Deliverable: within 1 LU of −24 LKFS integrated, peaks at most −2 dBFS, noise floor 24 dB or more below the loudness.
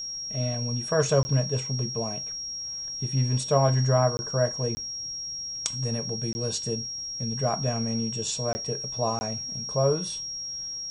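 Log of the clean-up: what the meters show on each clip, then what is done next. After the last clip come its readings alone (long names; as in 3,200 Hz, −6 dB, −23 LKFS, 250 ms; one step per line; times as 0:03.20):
number of dropouts 6; longest dropout 20 ms; interfering tone 5,600 Hz; level of the tone −32 dBFS; integrated loudness −27.5 LKFS; sample peak −7.0 dBFS; target loudness −24.0 LKFS
→ repair the gap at 0:01.23/0:04.17/0:04.75/0:06.33/0:08.53/0:09.19, 20 ms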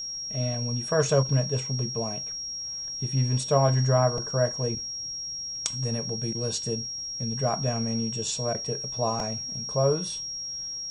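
number of dropouts 0; interfering tone 5,600 Hz; level of the tone −32 dBFS
→ notch filter 5,600 Hz, Q 30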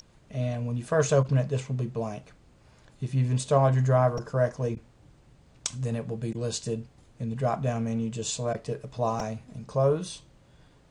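interfering tone none found; integrated loudness −28.5 LKFS; sample peak −7.5 dBFS; target loudness −24.0 LKFS
→ level +4.5 dB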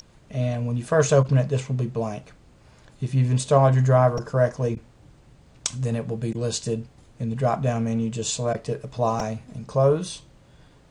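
integrated loudness −24.0 LKFS; sample peak −3.0 dBFS; background noise floor −54 dBFS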